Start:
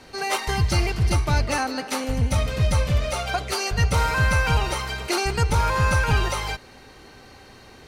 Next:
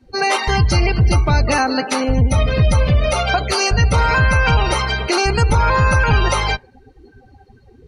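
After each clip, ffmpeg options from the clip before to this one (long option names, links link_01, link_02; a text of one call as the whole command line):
ffmpeg -i in.wav -af "acontrast=73,alimiter=limit=-10dB:level=0:latency=1:release=80,afftdn=noise_reduction=29:noise_floor=-30,volume=3.5dB" out.wav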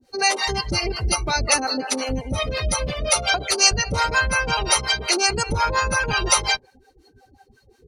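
ffmpeg -i in.wav -filter_complex "[0:a]bass=frequency=250:gain=-8,treble=frequency=4000:gain=12,acrossover=split=530[link_01][link_02];[link_01]aeval=exprs='val(0)*(1-1/2+1/2*cos(2*PI*5.6*n/s))':channel_layout=same[link_03];[link_02]aeval=exprs='val(0)*(1-1/2-1/2*cos(2*PI*5.6*n/s))':channel_layout=same[link_04];[link_03][link_04]amix=inputs=2:normalize=0" out.wav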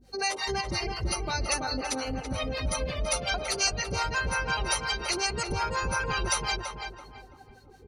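ffmpeg -i in.wav -filter_complex "[0:a]acompressor=threshold=-44dB:ratio=1.5,aeval=exprs='val(0)+0.00112*(sin(2*PI*50*n/s)+sin(2*PI*2*50*n/s)/2+sin(2*PI*3*50*n/s)/3+sin(2*PI*4*50*n/s)/4+sin(2*PI*5*50*n/s)/5)':channel_layout=same,asplit=2[link_01][link_02];[link_02]adelay=332,lowpass=frequency=2100:poles=1,volume=-4dB,asplit=2[link_03][link_04];[link_04]adelay=332,lowpass=frequency=2100:poles=1,volume=0.36,asplit=2[link_05][link_06];[link_06]adelay=332,lowpass=frequency=2100:poles=1,volume=0.36,asplit=2[link_07][link_08];[link_08]adelay=332,lowpass=frequency=2100:poles=1,volume=0.36,asplit=2[link_09][link_10];[link_10]adelay=332,lowpass=frequency=2100:poles=1,volume=0.36[link_11];[link_03][link_05][link_07][link_09][link_11]amix=inputs=5:normalize=0[link_12];[link_01][link_12]amix=inputs=2:normalize=0" out.wav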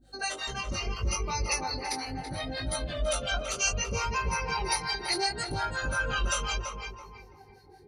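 ffmpeg -i in.wav -af "afftfilt=real='re*pow(10,11/40*sin(2*PI*(0.82*log(max(b,1)*sr/1024/100)/log(2)-(-0.35)*(pts-256)/sr)))':imag='im*pow(10,11/40*sin(2*PI*(0.82*log(max(b,1)*sr/1024/100)/log(2)-(-0.35)*(pts-256)/sr)))':win_size=1024:overlap=0.75,flanger=delay=18:depth=4.2:speed=0.71" out.wav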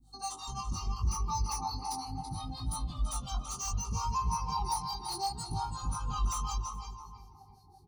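ffmpeg -i in.wav -filter_complex "[0:a]acrossover=split=270|4200[link_01][link_02][link_03];[link_02]asuperpass=centerf=980:order=12:qfactor=2[link_04];[link_03]asoftclip=type=tanh:threshold=-34.5dB[link_05];[link_01][link_04][link_05]amix=inputs=3:normalize=0,aecho=1:1:411:0.0631" out.wav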